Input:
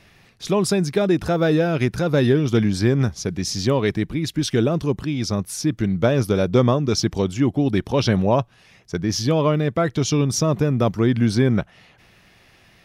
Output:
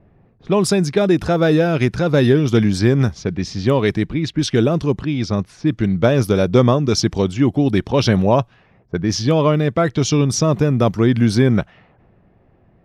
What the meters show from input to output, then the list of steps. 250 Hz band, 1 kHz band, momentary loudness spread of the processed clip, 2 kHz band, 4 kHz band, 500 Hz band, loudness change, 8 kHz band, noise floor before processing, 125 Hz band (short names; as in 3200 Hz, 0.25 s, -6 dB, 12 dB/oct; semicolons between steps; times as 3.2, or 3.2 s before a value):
+3.5 dB, +3.5 dB, 7 LU, +3.5 dB, +2.5 dB, +3.5 dB, +3.5 dB, +1.0 dB, -54 dBFS, +3.5 dB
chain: low-pass opened by the level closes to 600 Hz, open at -15.5 dBFS; gain +3.5 dB